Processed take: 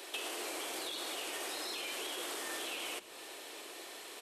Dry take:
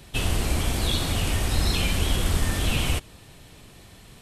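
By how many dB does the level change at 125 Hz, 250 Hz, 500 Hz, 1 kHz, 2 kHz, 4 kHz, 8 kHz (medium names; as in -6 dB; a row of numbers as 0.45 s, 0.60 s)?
under -40 dB, -18.5 dB, -10.0 dB, -9.5 dB, -10.0 dB, -10.5 dB, -9.5 dB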